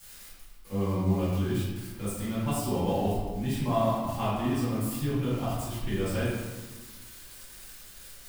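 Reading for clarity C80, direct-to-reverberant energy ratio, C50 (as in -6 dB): 1.5 dB, -12.5 dB, -1.5 dB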